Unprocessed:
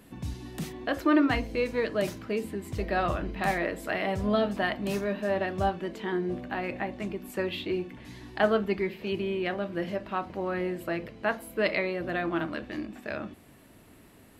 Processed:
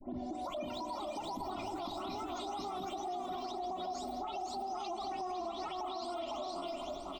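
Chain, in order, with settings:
every frequency bin delayed by itself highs late, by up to 902 ms
notch filter 4,900 Hz, Q 6
wrong playback speed 7.5 ips tape played at 15 ips
downward compressor, threshold −34 dBFS, peak gain reduction 12.5 dB
spectral tilt −2.5 dB per octave
phaser with its sweep stopped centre 440 Hz, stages 6
on a send: single-tap delay 503 ms −3.5 dB
on the sum: spring reverb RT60 3.9 s, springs 43 ms, chirp 50 ms, DRR 10 dB
brickwall limiter −36 dBFS, peak gain reduction 11 dB
level +4 dB

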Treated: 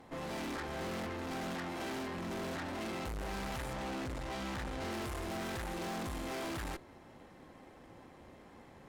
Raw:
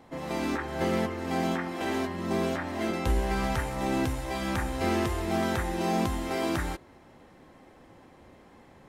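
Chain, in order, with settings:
0:03.73–0:04.91: parametric band 12,000 Hz −12.5 dB 1 octave
tube saturation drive 40 dB, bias 0.7
level +2 dB

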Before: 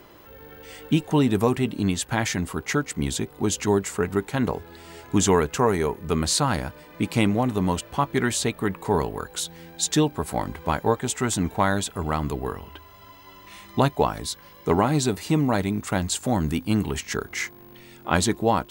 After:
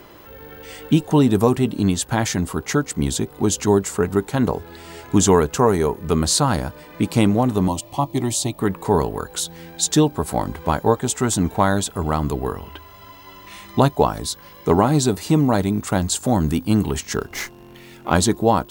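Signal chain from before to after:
0:07.68–0:08.59: phaser with its sweep stopped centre 300 Hz, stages 8
dynamic equaliser 2,200 Hz, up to −7 dB, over −44 dBFS, Q 1.3
0:17.16–0:18.14: windowed peak hold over 3 samples
level +5 dB

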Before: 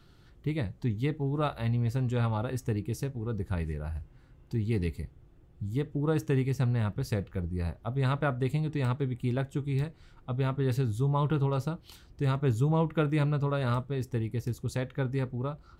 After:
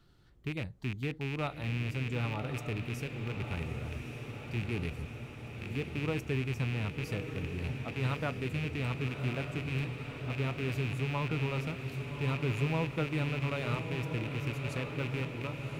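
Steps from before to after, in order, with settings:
loose part that buzzes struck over −31 dBFS, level −23 dBFS
feedback delay with all-pass diffusion 1,166 ms, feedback 70%, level −7 dB
level −6.5 dB

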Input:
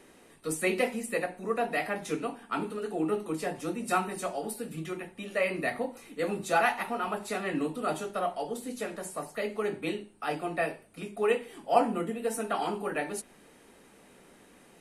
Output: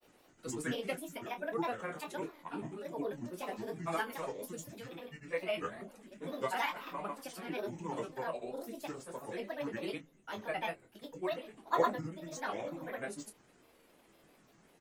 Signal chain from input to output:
granular cloud, grains 20 per second, pitch spread up and down by 7 semitones
double-tracking delay 24 ms −9.5 dB
level −7.5 dB

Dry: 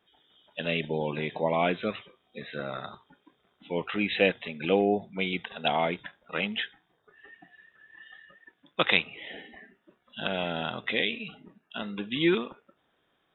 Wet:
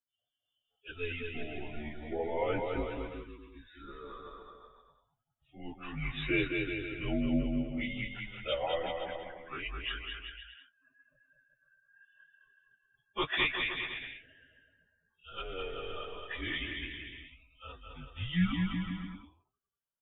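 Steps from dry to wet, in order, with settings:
spectral dynamics exaggerated over time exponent 1.5
frequency shifter −160 Hz
time stretch by phase vocoder 1.5×
on a send: bouncing-ball delay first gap 210 ms, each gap 0.8×, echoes 5
on the sum: level −2.5 dB

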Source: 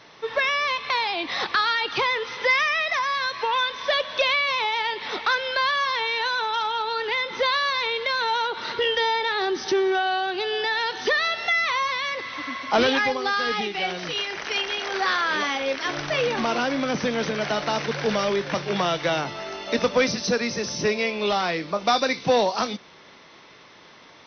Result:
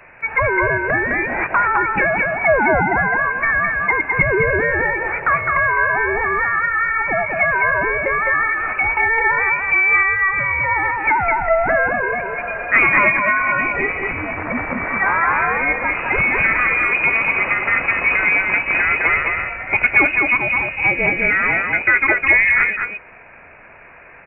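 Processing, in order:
pitch vibrato 4 Hz 30 cents
voice inversion scrambler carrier 2,700 Hz
single-tap delay 209 ms −3.5 dB
level +6 dB

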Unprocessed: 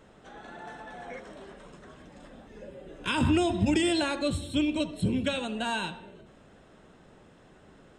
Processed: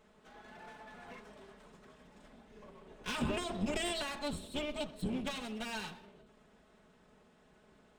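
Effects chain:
lower of the sound and its delayed copy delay 4.7 ms
level −7.5 dB

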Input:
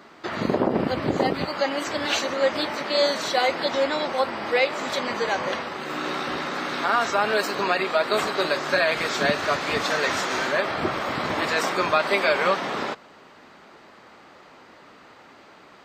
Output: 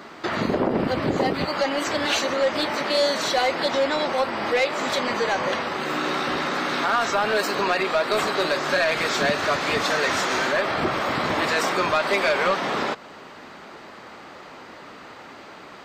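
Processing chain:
in parallel at +2 dB: downward compressor, threshold −32 dBFS, peak gain reduction 15.5 dB
on the sum: soft clipping −13.5 dBFS, distortion −16 dB

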